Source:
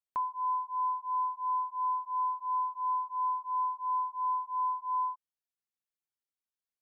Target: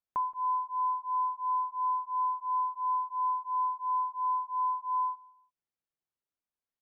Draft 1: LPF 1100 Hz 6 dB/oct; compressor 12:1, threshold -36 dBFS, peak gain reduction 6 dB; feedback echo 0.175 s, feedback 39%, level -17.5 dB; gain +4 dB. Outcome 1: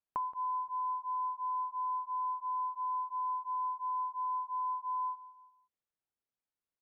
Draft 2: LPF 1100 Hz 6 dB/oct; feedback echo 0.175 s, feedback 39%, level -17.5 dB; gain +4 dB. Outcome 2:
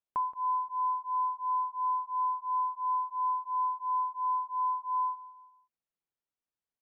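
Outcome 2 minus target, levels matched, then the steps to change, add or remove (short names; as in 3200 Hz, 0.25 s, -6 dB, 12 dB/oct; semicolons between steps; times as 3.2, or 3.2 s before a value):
echo-to-direct +8.5 dB
change: feedback echo 0.175 s, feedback 39%, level -26 dB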